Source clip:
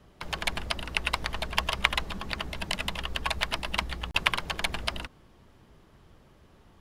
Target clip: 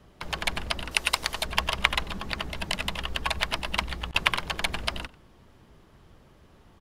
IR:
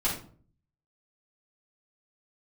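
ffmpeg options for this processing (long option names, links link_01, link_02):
-filter_complex "[0:a]asettb=1/sr,asplit=3[link_01][link_02][link_03];[link_01]atrim=end=0.914[link_04];[link_02]atrim=start=0.91:end=1.45,asetpts=PTS-STARTPTS,afade=type=in:duration=0.004:curve=qsin,afade=type=out:start_time=0.536:duration=0.004:curve=qsin,bass=frequency=250:gain=-7,treble=frequency=4000:gain=10[link_05];[link_03]atrim=start=1.446[link_06];[link_04][link_05]acrossfade=duration=0.004:curve1=hsin:curve2=qsin[link_07];[link_07][link_06]acrossfade=duration=0.004:curve1=qsin:curve2=hsin,asplit=2[link_08][link_09];[link_09]adelay=93.29,volume=-21dB,highshelf=frequency=4000:gain=-2.1[link_10];[link_08][link_10]amix=inputs=2:normalize=0,volume=1.5dB"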